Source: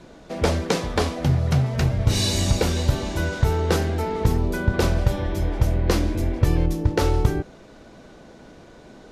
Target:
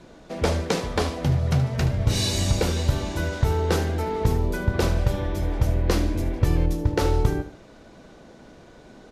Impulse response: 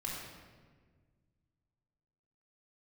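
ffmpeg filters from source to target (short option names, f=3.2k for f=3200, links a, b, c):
-af "aecho=1:1:75|150|225:0.224|0.0672|0.0201,volume=-2dB"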